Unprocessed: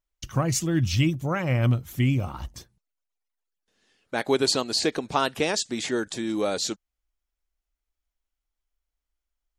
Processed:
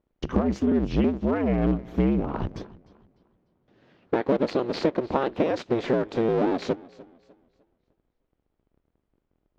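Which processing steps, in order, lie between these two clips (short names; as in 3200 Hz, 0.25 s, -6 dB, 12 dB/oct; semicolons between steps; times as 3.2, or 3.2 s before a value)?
cycle switcher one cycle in 2, inverted; bell 350 Hz +14.5 dB 2.8 oct; compressor 4:1, threshold -25 dBFS, peak gain reduction 16.5 dB; air absorption 250 m; warbling echo 0.301 s, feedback 34%, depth 95 cents, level -21 dB; gain +3.5 dB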